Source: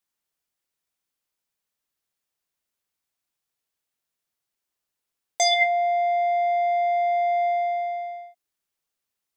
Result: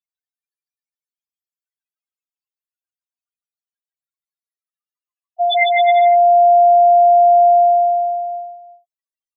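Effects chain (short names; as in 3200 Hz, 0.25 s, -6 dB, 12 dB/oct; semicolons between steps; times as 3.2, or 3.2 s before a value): loudest bins only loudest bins 2; bouncing-ball echo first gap 0.15 s, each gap 0.8×, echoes 5; high-pass sweep 1600 Hz -> 640 Hz, 3.13–6.78; gain +5.5 dB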